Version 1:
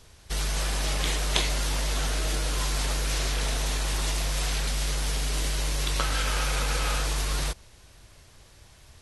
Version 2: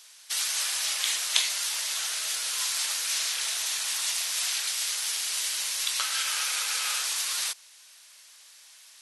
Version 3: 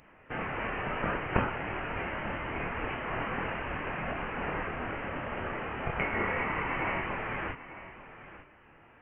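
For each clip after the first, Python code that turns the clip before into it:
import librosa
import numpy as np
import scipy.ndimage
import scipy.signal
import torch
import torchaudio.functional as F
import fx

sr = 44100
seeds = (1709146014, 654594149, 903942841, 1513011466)

y1 = scipy.signal.sosfilt(scipy.signal.butter(2, 1100.0, 'highpass', fs=sr, output='sos'), x)
y1 = fx.high_shelf(y1, sr, hz=2300.0, db=11.5)
y1 = fx.rider(y1, sr, range_db=4, speed_s=2.0)
y1 = y1 * librosa.db_to_amplitude(-5.0)
y2 = fx.chorus_voices(y1, sr, voices=6, hz=0.25, base_ms=26, depth_ms=3.0, mix_pct=40)
y2 = y2 + 10.0 ** (-14.5 / 20.0) * np.pad(y2, (int(894 * sr / 1000.0), 0))[:len(y2)]
y2 = fx.freq_invert(y2, sr, carrier_hz=3500)
y2 = y2 * librosa.db_to_amplitude(5.0)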